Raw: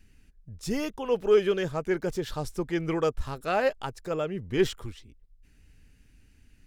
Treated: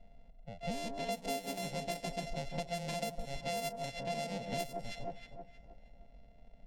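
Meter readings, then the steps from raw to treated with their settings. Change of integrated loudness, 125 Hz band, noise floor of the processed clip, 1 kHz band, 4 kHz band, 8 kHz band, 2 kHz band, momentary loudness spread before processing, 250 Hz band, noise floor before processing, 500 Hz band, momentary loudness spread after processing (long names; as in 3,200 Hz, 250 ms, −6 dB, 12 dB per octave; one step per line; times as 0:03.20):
−11.0 dB, −8.0 dB, −58 dBFS, −5.5 dB, −3.5 dB, −1.0 dB, −8.5 dB, 12 LU, −12.0 dB, −60 dBFS, −13.5 dB, 12 LU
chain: samples sorted by size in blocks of 64 samples
delay that swaps between a low-pass and a high-pass 157 ms, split 1,400 Hz, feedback 59%, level −7.5 dB
low-pass that shuts in the quiet parts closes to 2,200 Hz, open at −21 dBFS
phaser with its sweep stopped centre 340 Hz, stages 6
downward compressor 12 to 1, threshold −37 dBFS, peak gain reduction 20 dB
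level +2.5 dB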